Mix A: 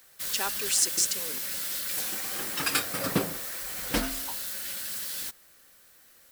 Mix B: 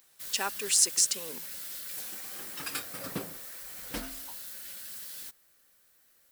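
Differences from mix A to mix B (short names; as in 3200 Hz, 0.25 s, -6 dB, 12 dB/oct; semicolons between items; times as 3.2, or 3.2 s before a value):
background -10.0 dB; master: add high shelf 9300 Hz +3.5 dB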